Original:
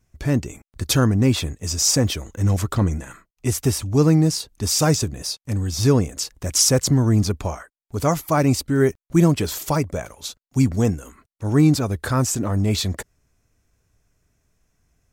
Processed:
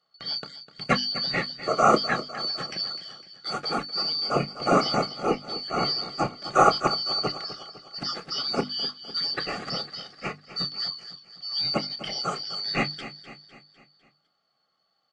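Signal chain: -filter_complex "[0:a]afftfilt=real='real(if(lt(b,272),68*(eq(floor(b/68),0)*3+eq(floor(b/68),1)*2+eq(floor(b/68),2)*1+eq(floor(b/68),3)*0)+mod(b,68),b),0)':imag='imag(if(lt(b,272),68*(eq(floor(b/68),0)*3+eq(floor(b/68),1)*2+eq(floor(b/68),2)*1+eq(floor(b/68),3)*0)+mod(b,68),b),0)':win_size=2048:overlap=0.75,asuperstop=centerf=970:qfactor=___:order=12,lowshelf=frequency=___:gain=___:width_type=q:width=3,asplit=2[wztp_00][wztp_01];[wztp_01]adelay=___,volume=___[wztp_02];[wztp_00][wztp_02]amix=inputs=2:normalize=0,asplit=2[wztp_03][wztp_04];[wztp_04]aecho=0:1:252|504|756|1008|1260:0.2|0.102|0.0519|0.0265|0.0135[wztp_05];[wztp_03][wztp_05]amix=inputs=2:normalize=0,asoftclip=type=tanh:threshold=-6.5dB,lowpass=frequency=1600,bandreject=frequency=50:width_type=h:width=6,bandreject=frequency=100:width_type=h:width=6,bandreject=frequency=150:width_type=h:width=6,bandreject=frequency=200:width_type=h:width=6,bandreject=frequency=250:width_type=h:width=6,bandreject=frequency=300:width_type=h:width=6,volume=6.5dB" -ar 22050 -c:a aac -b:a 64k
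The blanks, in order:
5, 110, -9, 28, -13dB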